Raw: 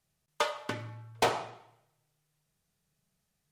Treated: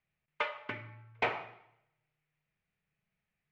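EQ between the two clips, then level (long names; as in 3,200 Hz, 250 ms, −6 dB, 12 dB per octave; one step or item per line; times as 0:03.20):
low-pass with resonance 2,300 Hz, resonance Q 3.4
−7.0 dB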